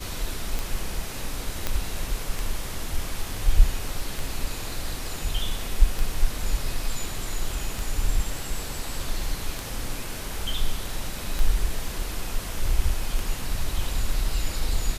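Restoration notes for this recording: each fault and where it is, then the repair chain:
scratch tick 33 1/3 rpm
0:01.67: click −10 dBFS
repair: click removal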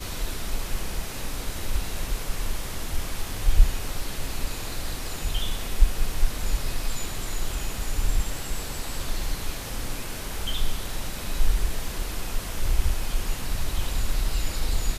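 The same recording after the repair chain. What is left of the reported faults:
none of them is left

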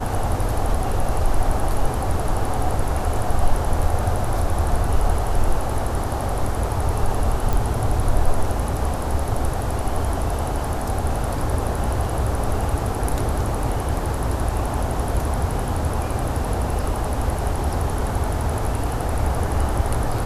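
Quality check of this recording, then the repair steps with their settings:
0:07.53: click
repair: click removal

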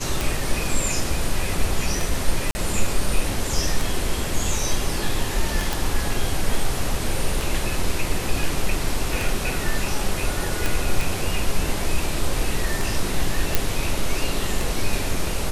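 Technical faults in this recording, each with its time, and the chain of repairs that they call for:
scratch tick 33 1/3 rpm
0:02.51–0:02.55: drop-out 40 ms
0:05.73: click
0:10.66: click
0:13.55: click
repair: click removal
repair the gap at 0:02.51, 40 ms

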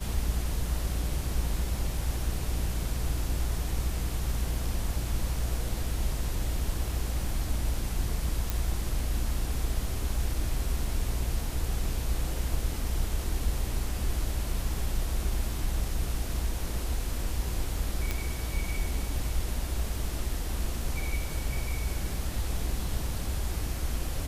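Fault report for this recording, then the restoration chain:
0:08.50: click
0:18.11: click −15 dBFS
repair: click removal

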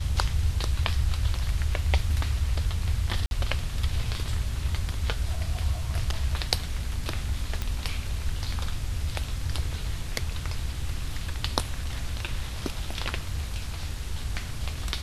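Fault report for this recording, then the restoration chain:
0:03.26–0:03.31: drop-out 51 ms
0:07.62: click −15 dBFS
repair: click removal
repair the gap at 0:03.26, 51 ms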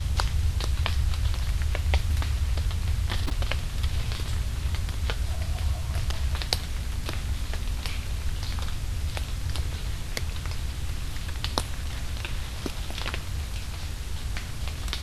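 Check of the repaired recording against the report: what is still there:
none of them is left

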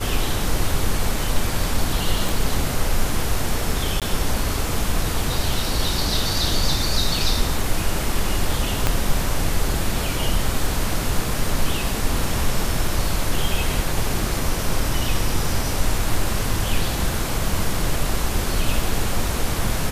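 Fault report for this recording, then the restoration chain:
0:02.29: click
0:04.00–0:04.02: drop-out 17 ms
0:08.87: click −4 dBFS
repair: click removal
repair the gap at 0:04.00, 17 ms

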